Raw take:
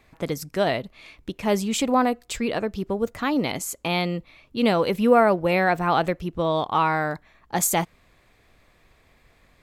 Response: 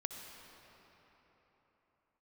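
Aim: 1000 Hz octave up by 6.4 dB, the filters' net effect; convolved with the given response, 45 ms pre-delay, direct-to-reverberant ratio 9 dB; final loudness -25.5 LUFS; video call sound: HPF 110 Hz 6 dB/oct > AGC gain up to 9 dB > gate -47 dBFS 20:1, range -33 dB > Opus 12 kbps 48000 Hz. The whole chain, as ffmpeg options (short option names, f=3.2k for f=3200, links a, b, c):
-filter_complex "[0:a]equalizer=f=1k:t=o:g=8.5,asplit=2[a][b];[1:a]atrim=start_sample=2205,adelay=45[c];[b][c]afir=irnorm=-1:irlink=0,volume=-8.5dB[d];[a][d]amix=inputs=2:normalize=0,highpass=f=110:p=1,dynaudnorm=m=9dB,agate=range=-33dB:threshold=-47dB:ratio=20,volume=-5dB" -ar 48000 -c:a libopus -b:a 12k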